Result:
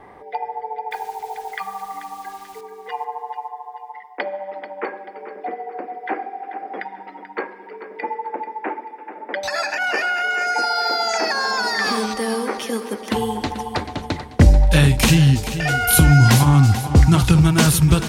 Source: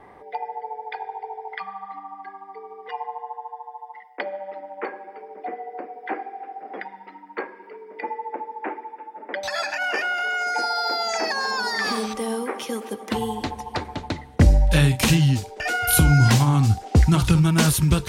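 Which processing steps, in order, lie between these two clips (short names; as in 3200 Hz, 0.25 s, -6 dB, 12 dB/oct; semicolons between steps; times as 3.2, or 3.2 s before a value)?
0.91–2.61 requantised 8-bit, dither none; 9.45–10.64 notch 3300 Hz, Q 6.6; on a send: feedback echo 0.437 s, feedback 39%, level -12 dB; on the sum: gain +3.5 dB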